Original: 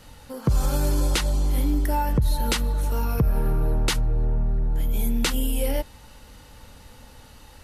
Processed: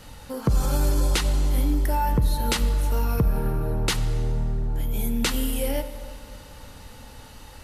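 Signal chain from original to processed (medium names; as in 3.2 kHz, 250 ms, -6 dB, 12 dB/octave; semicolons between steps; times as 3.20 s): in parallel at -1 dB: compression, threshold -29 dBFS, peak gain reduction 12 dB; on the sum: plate-style reverb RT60 2.4 s, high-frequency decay 0.7×, DRR 10.5 dB; trim -2.5 dB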